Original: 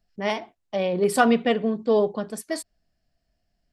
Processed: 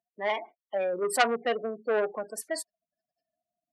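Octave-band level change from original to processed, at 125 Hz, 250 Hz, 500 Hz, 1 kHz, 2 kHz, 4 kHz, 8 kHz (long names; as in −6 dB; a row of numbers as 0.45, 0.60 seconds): below −15 dB, −15.5 dB, −5.5 dB, −4.0 dB, −2.5 dB, −3.0 dB, −1.0 dB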